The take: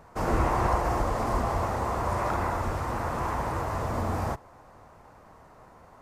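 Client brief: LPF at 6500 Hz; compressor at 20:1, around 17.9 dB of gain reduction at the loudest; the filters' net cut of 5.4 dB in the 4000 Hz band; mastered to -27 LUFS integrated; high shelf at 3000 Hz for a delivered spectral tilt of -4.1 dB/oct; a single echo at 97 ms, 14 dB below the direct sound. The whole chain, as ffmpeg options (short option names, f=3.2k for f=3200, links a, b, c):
-af "lowpass=6.5k,highshelf=f=3k:g=-3.5,equalizer=f=4k:t=o:g=-3.5,acompressor=threshold=-38dB:ratio=20,aecho=1:1:97:0.2,volume=17dB"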